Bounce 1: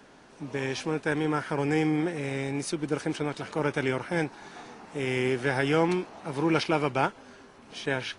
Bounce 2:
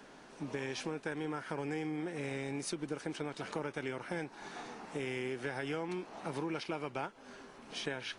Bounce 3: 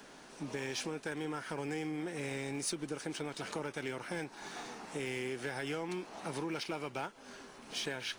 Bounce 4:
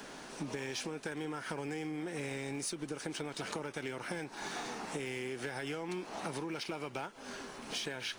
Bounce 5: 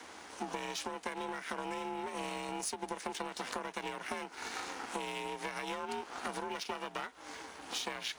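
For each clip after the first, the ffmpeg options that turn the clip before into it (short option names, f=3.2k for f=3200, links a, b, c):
-af "equalizer=f=84:w=1.2:g=-7,acompressor=threshold=-34dB:ratio=6,volume=-1dB"
-filter_complex "[0:a]highshelf=f=3.7k:g=8,acrossover=split=1600[a][b];[b]acrusher=bits=5:mode=log:mix=0:aa=0.000001[c];[a][c]amix=inputs=2:normalize=0,asoftclip=type=tanh:threshold=-26.5dB"
-af "acompressor=threshold=-42dB:ratio=6,volume=6dB"
-af "afreqshift=300,aeval=exprs='val(0)*sin(2*PI*250*n/s)':c=same,aeval=exprs='0.0562*(cos(1*acos(clip(val(0)/0.0562,-1,1)))-cos(1*PI/2))+0.00316*(cos(7*acos(clip(val(0)/0.0562,-1,1)))-cos(7*PI/2))':c=same,volume=4.5dB"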